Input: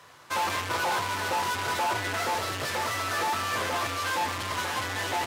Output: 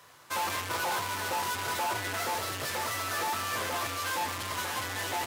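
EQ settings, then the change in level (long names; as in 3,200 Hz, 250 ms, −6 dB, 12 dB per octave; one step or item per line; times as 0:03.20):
high-shelf EQ 9,100 Hz +10.5 dB
−4.0 dB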